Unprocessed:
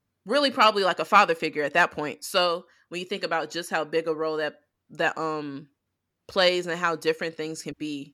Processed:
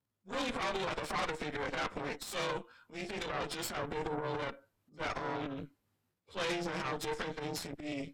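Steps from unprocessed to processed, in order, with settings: frequency axis rescaled in octaves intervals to 92%; transient shaper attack -9 dB, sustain +10 dB; compression 3:1, threshold -30 dBFS, peak gain reduction 11 dB; Chebyshev shaper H 6 -11 dB, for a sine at -18 dBFS; trim -6.5 dB

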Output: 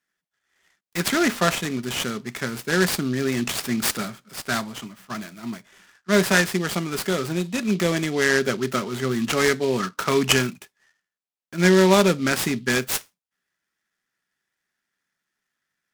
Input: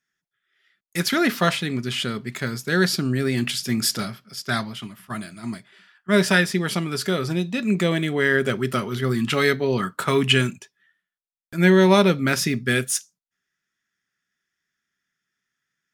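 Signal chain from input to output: high-pass 160 Hz; delay time shaken by noise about 3.5 kHz, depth 0.042 ms

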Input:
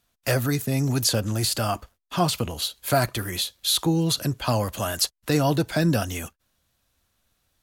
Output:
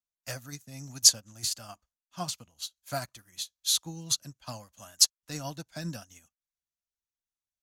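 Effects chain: fifteen-band graphic EQ 100 Hz -4 dB, 400 Hz -11 dB, 6.3 kHz +11 dB; upward expansion 2.5:1, over -34 dBFS

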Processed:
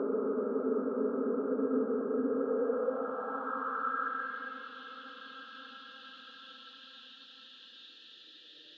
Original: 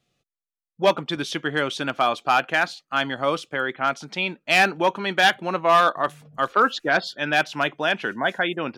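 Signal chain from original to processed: tilt EQ -4.5 dB/octave; level held to a coarse grid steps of 22 dB; Paulstretch 46×, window 0.25 s, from 6.59 s; band-pass sweep 340 Hz -> 2.7 kHz, 2.26–4.73 s; trim -3 dB

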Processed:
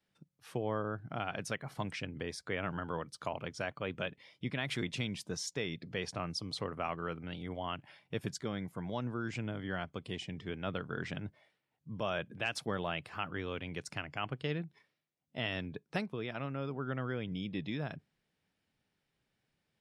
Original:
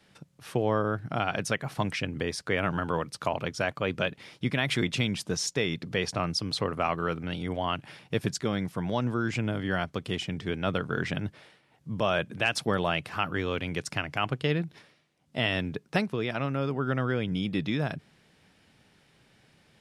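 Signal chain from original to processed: spectral noise reduction 11 dB; trim -9 dB

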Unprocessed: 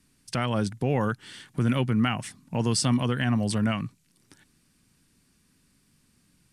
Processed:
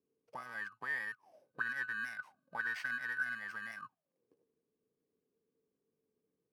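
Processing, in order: bit-reversed sample order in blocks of 32 samples; 1.34–3.35 s: small resonant body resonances 1.5/3.8 kHz, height 15 dB; auto-wah 440–1800 Hz, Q 15, up, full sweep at -21 dBFS; trim +6.5 dB

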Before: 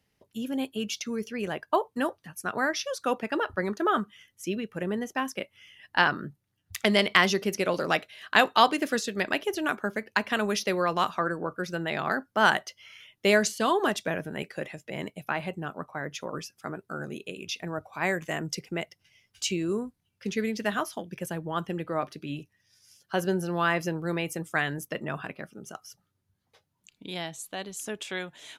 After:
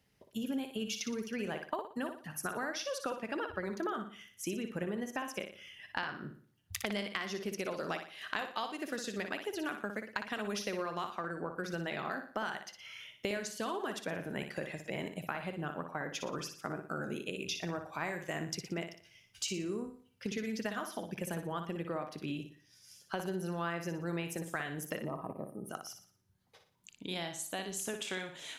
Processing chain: time-frequency box 25.00–25.70 s, 1.3–8.4 kHz -28 dB; compression 12:1, threshold -34 dBFS, peak gain reduction 21 dB; on a send: flutter echo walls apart 10.1 m, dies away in 0.46 s

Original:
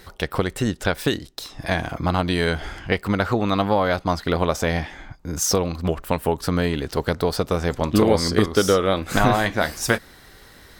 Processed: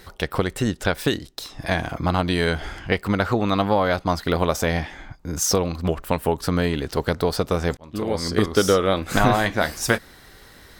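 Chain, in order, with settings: 4.15–4.66 s: treble shelf 11 kHz +8 dB; 7.77–8.53 s: fade in

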